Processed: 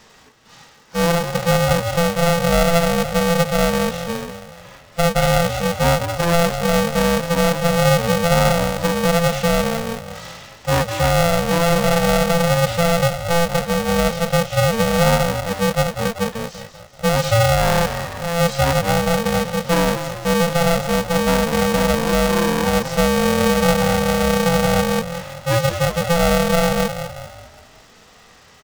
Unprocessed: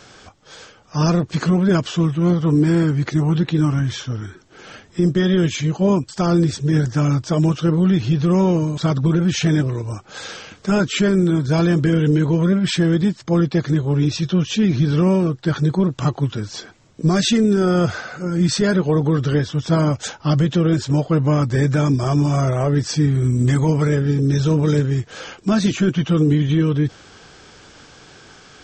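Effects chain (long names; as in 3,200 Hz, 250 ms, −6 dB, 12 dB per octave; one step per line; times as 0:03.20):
echo with shifted repeats 192 ms, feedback 49%, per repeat +30 Hz, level −9 dB
harmonic and percussive parts rebalanced percussive −15 dB
ring modulator with a square carrier 340 Hz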